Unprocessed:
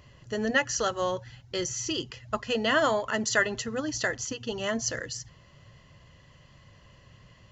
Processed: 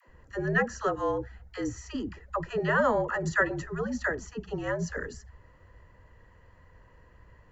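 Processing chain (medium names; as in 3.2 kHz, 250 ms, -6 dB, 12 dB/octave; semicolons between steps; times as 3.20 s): frequency shift -57 Hz; high-order bell 4.2 kHz -15.5 dB; phase dispersion lows, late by 80 ms, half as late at 440 Hz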